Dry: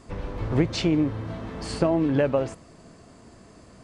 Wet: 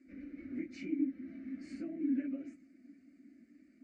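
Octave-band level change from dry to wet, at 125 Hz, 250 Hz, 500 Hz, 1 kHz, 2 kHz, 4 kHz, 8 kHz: -32.5 dB, -10.5 dB, -25.5 dB, under -35 dB, -18.0 dB, under -25 dB, under -25 dB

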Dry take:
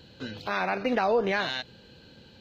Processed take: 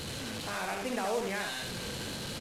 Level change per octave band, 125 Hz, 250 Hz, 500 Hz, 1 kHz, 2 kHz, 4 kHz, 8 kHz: +0.5 dB, -5.5 dB, -7.5 dB, -7.0 dB, -5.5 dB, -1.0 dB, n/a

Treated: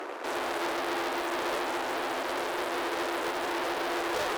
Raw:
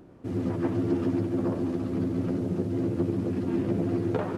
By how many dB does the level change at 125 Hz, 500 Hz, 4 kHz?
-27.0 dB, -1.0 dB, n/a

